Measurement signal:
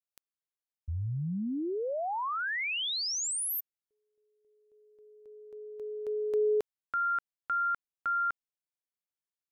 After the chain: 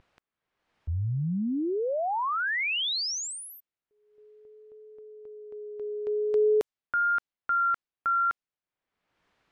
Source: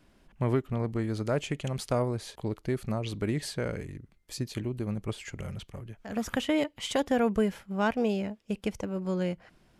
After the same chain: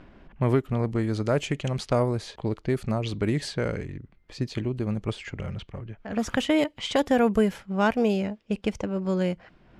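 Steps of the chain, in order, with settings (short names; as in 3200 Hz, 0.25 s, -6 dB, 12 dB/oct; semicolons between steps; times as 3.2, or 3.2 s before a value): vibrato 0.47 Hz 22 cents; upward compressor, threshold -46 dBFS; low-pass opened by the level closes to 2200 Hz, open at -24 dBFS; gain +4.5 dB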